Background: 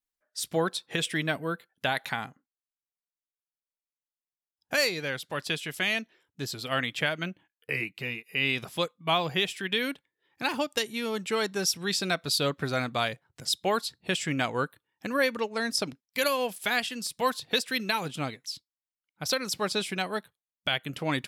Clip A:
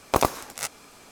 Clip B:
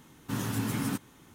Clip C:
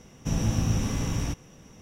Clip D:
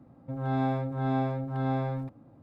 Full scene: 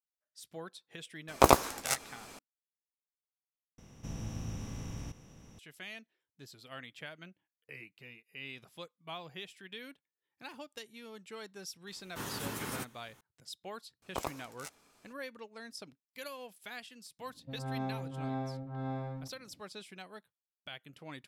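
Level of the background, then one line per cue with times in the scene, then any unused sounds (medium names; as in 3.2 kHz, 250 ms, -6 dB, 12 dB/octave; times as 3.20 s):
background -18 dB
1.28 s: add A -1 dB + doubling 15 ms -11 dB
3.78 s: replace with C -16.5 dB + spectral levelling over time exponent 0.6
11.87 s: add B -8.5 dB + spectral peaks clipped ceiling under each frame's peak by 14 dB
14.02 s: add A -16.5 dB
17.19 s: add D -9 dB + level-controlled noise filter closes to 350 Hz, open at -26 dBFS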